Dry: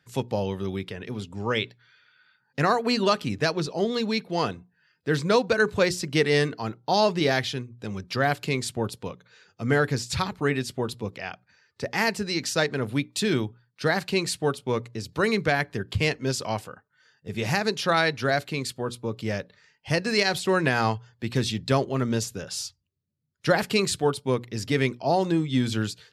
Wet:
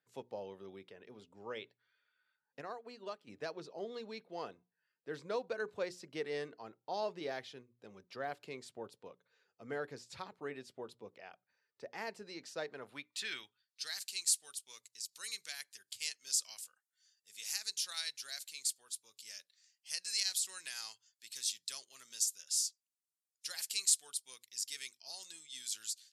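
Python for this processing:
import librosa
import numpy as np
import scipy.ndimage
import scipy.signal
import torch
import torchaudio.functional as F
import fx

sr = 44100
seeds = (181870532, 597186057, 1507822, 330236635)

y = librosa.effects.preemphasis(x, coef=0.9, zi=[0.0])
y = fx.filter_sweep_bandpass(y, sr, from_hz=530.0, to_hz=7700.0, start_s=12.64, end_s=14.03, q=1.1)
y = fx.upward_expand(y, sr, threshold_db=-52.0, expansion=1.5, at=(2.6, 3.27), fade=0.02)
y = y * 10.0 ** (3.0 / 20.0)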